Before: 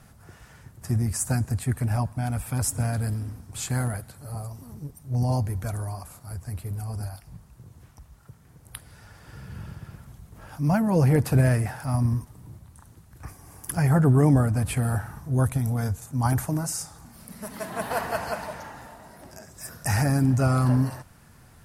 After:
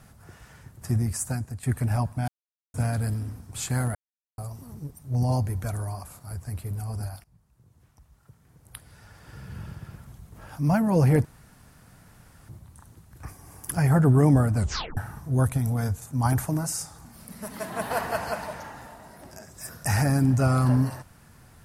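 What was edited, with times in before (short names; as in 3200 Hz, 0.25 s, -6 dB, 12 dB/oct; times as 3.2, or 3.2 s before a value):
0.97–1.63 fade out, to -12 dB
2.28–2.74 mute
3.95–4.38 mute
7.24–9.51 fade in linear, from -19 dB
11.25–12.49 room tone
14.56 tape stop 0.41 s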